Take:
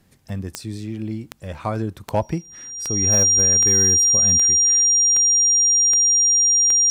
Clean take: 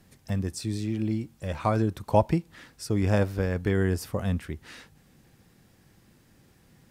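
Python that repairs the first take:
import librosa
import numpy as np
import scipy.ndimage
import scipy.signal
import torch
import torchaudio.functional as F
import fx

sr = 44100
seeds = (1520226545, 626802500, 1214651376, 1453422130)

y = fx.fix_declip(x, sr, threshold_db=-10.0)
y = fx.fix_declick_ar(y, sr, threshold=10.0)
y = fx.notch(y, sr, hz=5700.0, q=30.0)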